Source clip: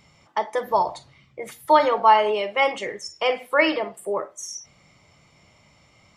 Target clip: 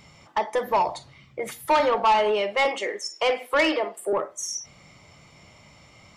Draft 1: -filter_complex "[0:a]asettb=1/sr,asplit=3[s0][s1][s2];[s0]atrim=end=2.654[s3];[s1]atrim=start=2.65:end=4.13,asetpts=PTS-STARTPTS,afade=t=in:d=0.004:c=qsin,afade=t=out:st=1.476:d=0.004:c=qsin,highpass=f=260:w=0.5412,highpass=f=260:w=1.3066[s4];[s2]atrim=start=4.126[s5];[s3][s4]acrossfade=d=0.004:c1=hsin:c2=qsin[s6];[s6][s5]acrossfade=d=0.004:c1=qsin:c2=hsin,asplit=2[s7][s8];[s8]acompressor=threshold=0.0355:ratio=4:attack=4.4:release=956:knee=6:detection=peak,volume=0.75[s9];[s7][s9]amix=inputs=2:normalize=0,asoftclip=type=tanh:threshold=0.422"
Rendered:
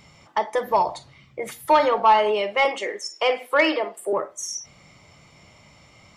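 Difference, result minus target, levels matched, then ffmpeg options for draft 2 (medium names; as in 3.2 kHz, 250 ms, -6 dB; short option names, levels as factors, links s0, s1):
saturation: distortion -8 dB
-filter_complex "[0:a]asettb=1/sr,asplit=3[s0][s1][s2];[s0]atrim=end=2.654[s3];[s1]atrim=start=2.65:end=4.13,asetpts=PTS-STARTPTS,afade=t=in:d=0.004:c=qsin,afade=t=out:st=1.476:d=0.004:c=qsin,highpass=f=260:w=0.5412,highpass=f=260:w=1.3066[s4];[s2]atrim=start=4.126[s5];[s3][s4]acrossfade=d=0.004:c1=hsin:c2=qsin[s6];[s6][s5]acrossfade=d=0.004:c1=qsin:c2=hsin,asplit=2[s7][s8];[s8]acompressor=threshold=0.0355:ratio=4:attack=4.4:release=956:knee=6:detection=peak,volume=0.75[s9];[s7][s9]amix=inputs=2:normalize=0,asoftclip=type=tanh:threshold=0.188"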